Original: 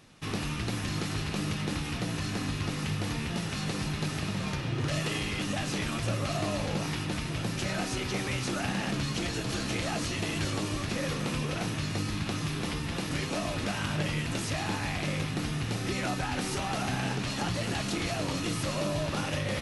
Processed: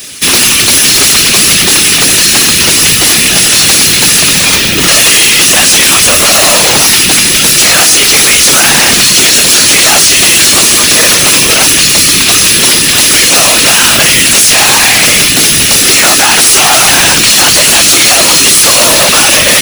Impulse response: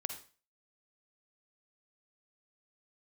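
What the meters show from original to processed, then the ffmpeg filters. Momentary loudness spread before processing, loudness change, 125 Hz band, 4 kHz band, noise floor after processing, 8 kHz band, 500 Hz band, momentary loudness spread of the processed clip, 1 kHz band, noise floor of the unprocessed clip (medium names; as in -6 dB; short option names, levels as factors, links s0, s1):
2 LU, +29.5 dB, +10.5 dB, +32.5 dB, -7 dBFS, +38.0 dB, +21.0 dB, 1 LU, +23.5 dB, -35 dBFS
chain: -filter_complex "[0:a]asplit=2[s0][s1];[s1]acrusher=bits=5:mode=log:mix=0:aa=0.000001,volume=0.335[s2];[s0][s2]amix=inputs=2:normalize=0,lowshelf=f=100:g=-8,acrossover=split=580|1400[s3][s4][s5];[s4]acrusher=bits=5:mix=0:aa=0.5[s6];[s3][s6][s5]amix=inputs=3:normalize=0,aemphasis=mode=production:type=riaa,afftfilt=real='hypot(re,im)*cos(2*PI*random(0))':imag='hypot(re,im)*sin(2*PI*random(1))':win_size=512:overlap=0.75,apsyclip=50.1,volume=0.841"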